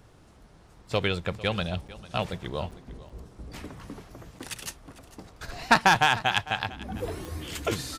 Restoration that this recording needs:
click removal
repair the gap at 0:01.88/0:02.71/0:03.09/0:04.39, 5.9 ms
echo removal 450 ms −18.5 dB

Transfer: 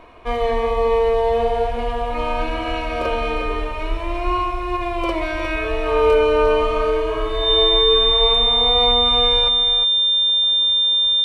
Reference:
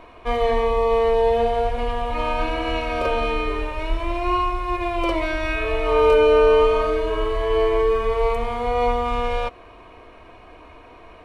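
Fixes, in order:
notch filter 3,600 Hz, Q 30
echo removal 356 ms −8.5 dB

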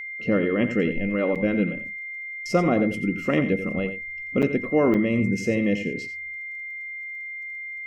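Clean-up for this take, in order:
click removal
notch filter 2,100 Hz, Q 30
repair the gap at 0:01.35/0:04.42/0:04.94, 7.1 ms
echo removal 88 ms −11 dB

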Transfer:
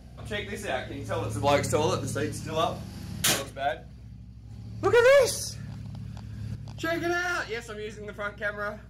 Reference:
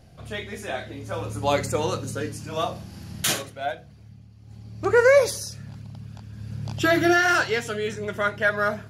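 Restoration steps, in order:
clipped peaks rebuilt −15 dBFS
hum removal 60.8 Hz, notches 4
level correction +9 dB, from 0:06.55

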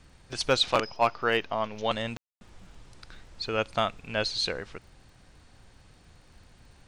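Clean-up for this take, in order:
clipped peaks rebuilt −13 dBFS
click removal
ambience match 0:02.17–0:02.41

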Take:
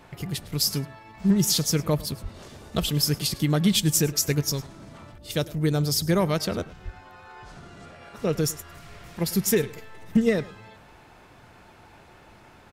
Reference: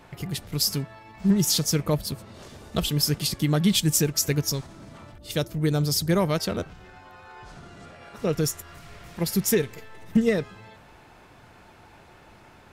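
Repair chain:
high-pass at the plosives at 0:02.22/0:06.84
echo removal 104 ms −20 dB

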